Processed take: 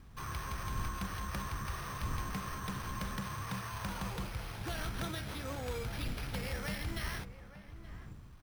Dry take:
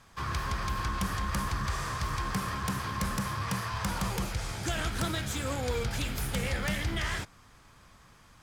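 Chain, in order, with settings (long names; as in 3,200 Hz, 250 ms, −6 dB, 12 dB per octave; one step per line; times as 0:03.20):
wind on the microphone 95 Hz −40 dBFS
bad sample-rate conversion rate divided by 6×, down none, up hold
slap from a distant wall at 150 metres, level −13 dB
level −7.5 dB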